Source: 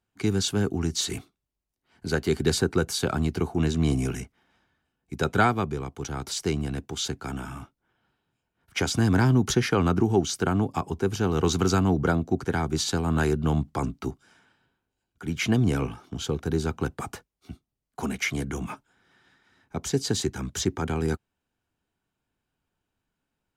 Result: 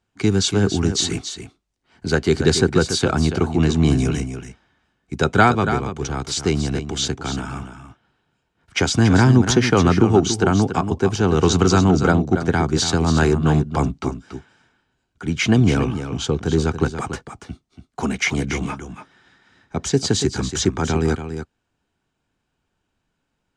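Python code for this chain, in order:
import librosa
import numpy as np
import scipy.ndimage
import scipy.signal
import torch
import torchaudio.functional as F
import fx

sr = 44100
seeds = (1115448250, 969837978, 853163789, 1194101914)

y = scipy.signal.sosfilt(scipy.signal.butter(4, 8500.0, 'lowpass', fs=sr, output='sos'), x)
y = y + 10.0 ** (-9.5 / 20.0) * np.pad(y, (int(283 * sr / 1000.0), 0))[:len(y)]
y = y * librosa.db_to_amplitude(7.0)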